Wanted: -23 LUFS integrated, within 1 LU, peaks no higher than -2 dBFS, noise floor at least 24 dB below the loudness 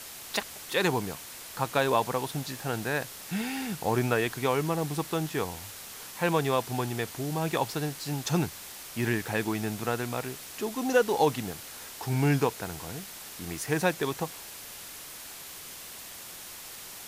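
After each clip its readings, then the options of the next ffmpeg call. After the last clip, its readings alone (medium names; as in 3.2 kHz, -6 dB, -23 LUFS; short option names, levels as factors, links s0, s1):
noise floor -44 dBFS; noise floor target -55 dBFS; loudness -30.5 LUFS; peak level -10.5 dBFS; loudness target -23.0 LUFS
-> -af "afftdn=nr=11:nf=-44"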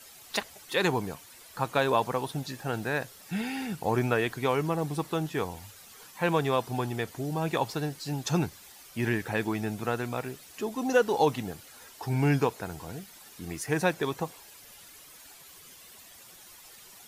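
noise floor -52 dBFS; noise floor target -54 dBFS
-> -af "afftdn=nr=6:nf=-52"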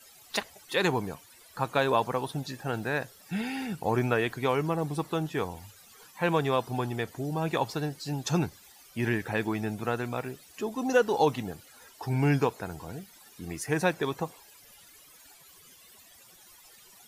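noise floor -55 dBFS; loudness -30.0 LUFS; peak level -10.5 dBFS; loudness target -23.0 LUFS
-> -af "volume=2.24"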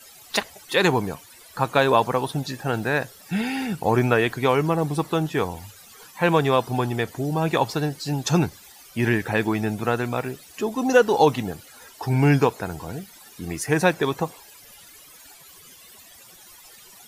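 loudness -23.0 LUFS; peak level -3.5 dBFS; noise floor -48 dBFS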